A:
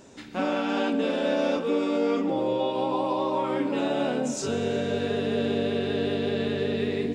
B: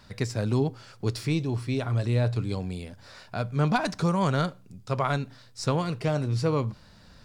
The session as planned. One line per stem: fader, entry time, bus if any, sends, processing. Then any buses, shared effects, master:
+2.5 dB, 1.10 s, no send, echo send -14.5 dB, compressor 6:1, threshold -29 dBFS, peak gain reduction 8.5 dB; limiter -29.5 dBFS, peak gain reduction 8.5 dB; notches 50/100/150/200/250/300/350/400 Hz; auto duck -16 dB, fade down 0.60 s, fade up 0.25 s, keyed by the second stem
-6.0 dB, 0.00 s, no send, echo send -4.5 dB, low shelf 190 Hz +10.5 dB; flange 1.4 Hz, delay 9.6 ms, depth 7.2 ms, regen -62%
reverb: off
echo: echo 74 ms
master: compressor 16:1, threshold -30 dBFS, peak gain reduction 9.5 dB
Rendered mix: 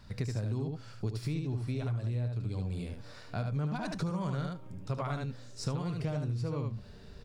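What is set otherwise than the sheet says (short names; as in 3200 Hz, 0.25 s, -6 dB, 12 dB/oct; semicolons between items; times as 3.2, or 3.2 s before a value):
stem A +2.5 dB -> -8.5 dB; stem B: missing flange 1.4 Hz, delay 9.6 ms, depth 7.2 ms, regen -62%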